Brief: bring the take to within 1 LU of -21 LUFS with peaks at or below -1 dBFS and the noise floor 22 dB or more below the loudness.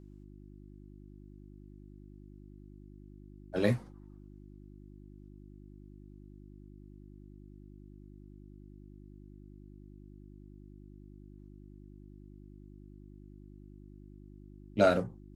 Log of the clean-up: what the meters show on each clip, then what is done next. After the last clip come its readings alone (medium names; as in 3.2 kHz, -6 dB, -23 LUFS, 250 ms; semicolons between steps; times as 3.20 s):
hum 50 Hz; highest harmonic 350 Hz; hum level -49 dBFS; loudness -30.0 LUFS; peak level -11.5 dBFS; loudness target -21.0 LUFS
-> de-hum 50 Hz, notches 7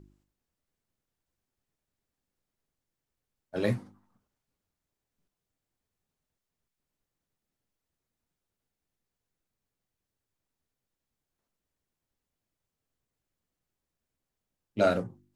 hum not found; loudness -30.0 LUFS; peak level -10.5 dBFS; loudness target -21.0 LUFS
-> trim +9 dB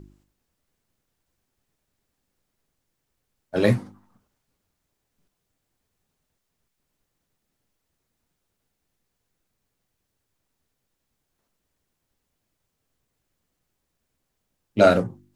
loudness -21.0 LUFS; peak level -1.5 dBFS; noise floor -79 dBFS